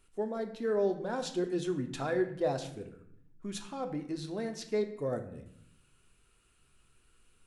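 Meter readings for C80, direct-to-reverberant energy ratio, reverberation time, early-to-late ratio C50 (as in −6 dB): 13.0 dB, 4.5 dB, 0.70 s, 10.5 dB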